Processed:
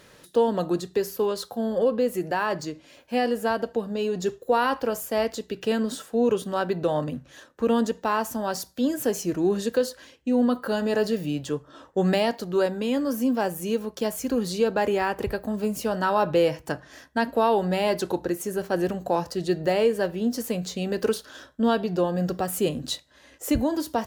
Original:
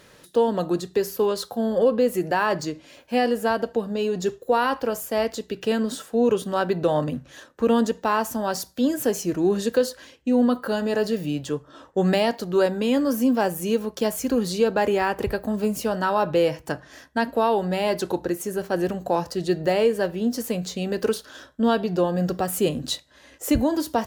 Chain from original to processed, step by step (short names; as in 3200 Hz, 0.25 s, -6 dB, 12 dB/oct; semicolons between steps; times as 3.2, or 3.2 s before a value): vocal rider 2 s; gain -2.5 dB